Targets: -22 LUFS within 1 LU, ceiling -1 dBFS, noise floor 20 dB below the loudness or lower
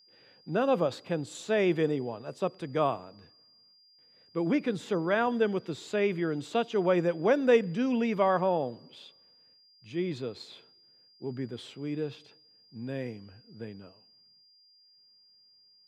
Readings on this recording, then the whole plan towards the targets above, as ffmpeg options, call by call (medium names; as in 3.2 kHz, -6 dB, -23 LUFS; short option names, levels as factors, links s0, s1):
steady tone 4.8 kHz; tone level -59 dBFS; loudness -29.5 LUFS; peak level -11.0 dBFS; loudness target -22.0 LUFS
-> -af "bandreject=f=4800:w=30"
-af "volume=2.37"